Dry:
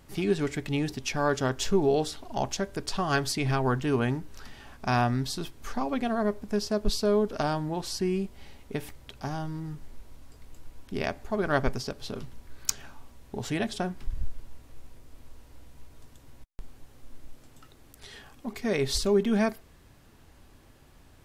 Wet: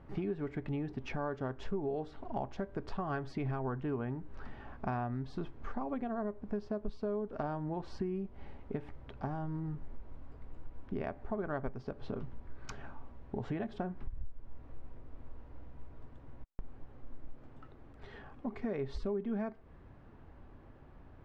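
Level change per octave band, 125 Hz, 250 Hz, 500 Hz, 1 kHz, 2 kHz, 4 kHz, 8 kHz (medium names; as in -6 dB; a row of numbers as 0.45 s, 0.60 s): -8.0 dB, -8.5 dB, -10.0 dB, -10.0 dB, -14.0 dB, -23.0 dB, under -25 dB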